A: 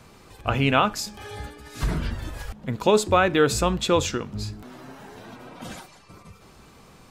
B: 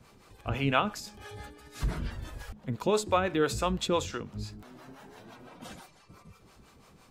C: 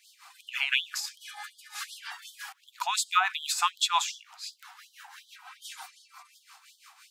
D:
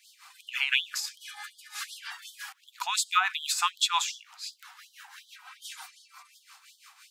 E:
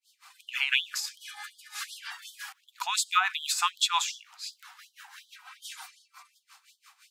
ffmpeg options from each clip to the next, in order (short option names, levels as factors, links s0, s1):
-filter_complex "[0:a]acrossover=split=460[s0][s1];[s0]aeval=exprs='val(0)*(1-0.7/2+0.7/2*cos(2*PI*5.9*n/s))':c=same[s2];[s1]aeval=exprs='val(0)*(1-0.7/2-0.7/2*cos(2*PI*5.9*n/s))':c=same[s3];[s2][s3]amix=inputs=2:normalize=0,volume=0.631"
-af "afftfilt=real='re*gte(b*sr/1024,680*pow(3100/680,0.5+0.5*sin(2*PI*2.7*pts/sr)))':imag='im*gte(b*sr/1024,680*pow(3100/680,0.5+0.5*sin(2*PI*2.7*pts/sr)))':win_size=1024:overlap=0.75,volume=2.51"
-af "highpass=1000,volume=1.12"
-af "agate=range=0.0224:threshold=0.00316:ratio=3:detection=peak"